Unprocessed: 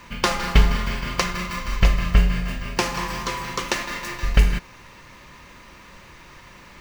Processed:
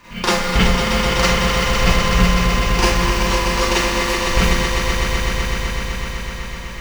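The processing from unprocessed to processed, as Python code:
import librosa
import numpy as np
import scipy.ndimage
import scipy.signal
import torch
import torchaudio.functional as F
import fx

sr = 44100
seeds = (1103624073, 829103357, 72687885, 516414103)

y = fx.echo_swell(x, sr, ms=126, loudest=5, wet_db=-7.5)
y = fx.rev_schroeder(y, sr, rt60_s=0.32, comb_ms=33, drr_db=-8.0)
y = F.gain(torch.from_numpy(y), -3.5).numpy()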